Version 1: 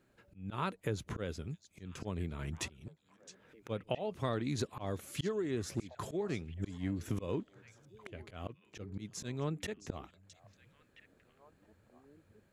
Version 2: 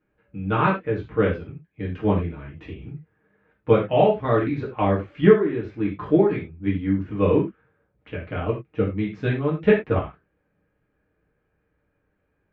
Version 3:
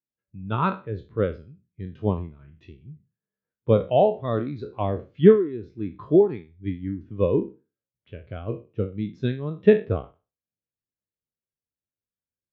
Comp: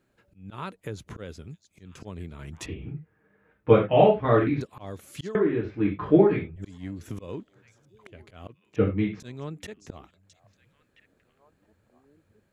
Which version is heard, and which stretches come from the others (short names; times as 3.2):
1
2.66–4.61 from 2
5.35–6.56 from 2
8.76–9.2 from 2
not used: 3